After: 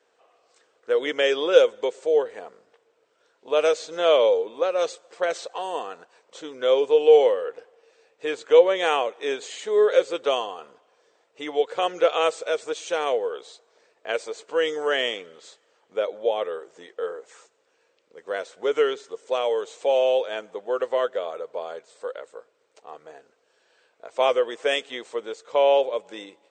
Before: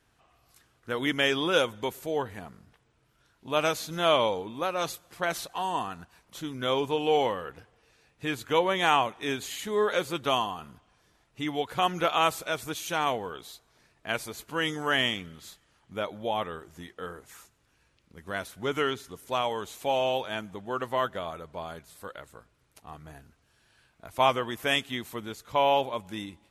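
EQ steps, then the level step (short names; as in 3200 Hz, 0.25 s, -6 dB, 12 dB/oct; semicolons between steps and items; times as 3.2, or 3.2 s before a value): resonant high-pass 480 Hz, resonance Q 4.9; brick-wall FIR low-pass 8700 Hz; dynamic EQ 920 Hz, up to -6 dB, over -33 dBFS, Q 1.8; 0.0 dB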